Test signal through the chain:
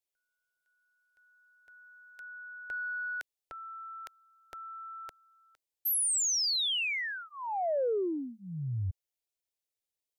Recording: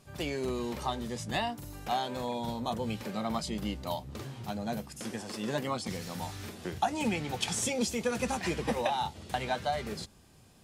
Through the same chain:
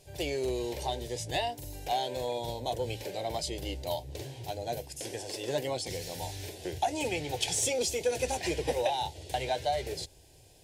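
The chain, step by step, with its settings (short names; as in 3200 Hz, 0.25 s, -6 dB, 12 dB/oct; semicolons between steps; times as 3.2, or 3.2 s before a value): fixed phaser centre 510 Hz, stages 4; in parallel at -3.5 dB: soft clip -28.5 dBFS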